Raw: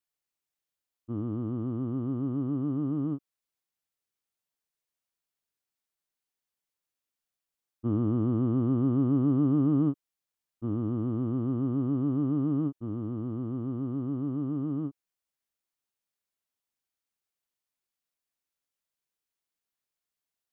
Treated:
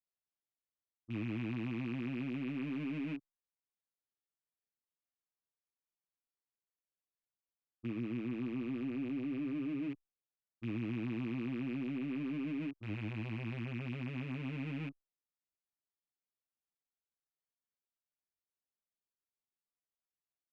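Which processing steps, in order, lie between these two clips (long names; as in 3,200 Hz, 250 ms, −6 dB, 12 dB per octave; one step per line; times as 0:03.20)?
loose part that buzzes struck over −38 dBFS, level −22 dBFS
low-pass filter 1,100 Hz 6 dB per octave
brickwall limiter −24 dBFS, peak gain reduction 7.5 dB
barber-pole flanger 7.9 ms +0.32 Hz
level −4.5 dB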